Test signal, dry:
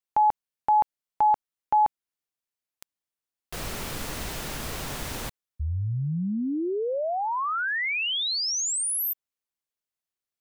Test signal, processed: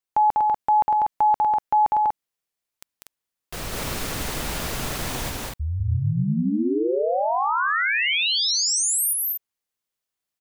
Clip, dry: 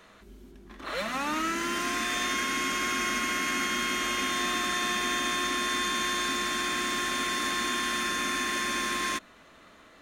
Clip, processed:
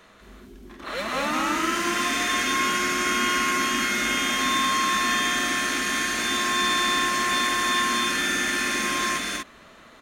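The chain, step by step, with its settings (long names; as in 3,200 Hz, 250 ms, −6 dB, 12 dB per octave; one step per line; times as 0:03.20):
loudspeakers that aren't time-aligned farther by 67 metres −2 dB, 83 metres −3 dB
level +2 dB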